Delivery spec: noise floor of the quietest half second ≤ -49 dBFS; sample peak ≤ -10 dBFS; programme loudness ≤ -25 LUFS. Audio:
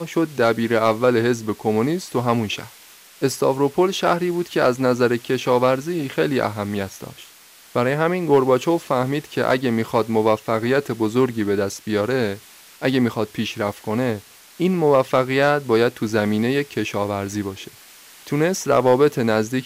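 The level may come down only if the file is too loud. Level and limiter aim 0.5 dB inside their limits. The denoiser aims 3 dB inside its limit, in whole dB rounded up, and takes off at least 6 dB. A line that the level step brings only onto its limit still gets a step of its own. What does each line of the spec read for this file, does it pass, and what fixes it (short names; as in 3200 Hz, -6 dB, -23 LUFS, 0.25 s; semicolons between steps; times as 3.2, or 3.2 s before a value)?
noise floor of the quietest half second -47 dBFS: fail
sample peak -5.5 dBFS: fail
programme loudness -20.5 LUFS: fail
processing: gain -5 dB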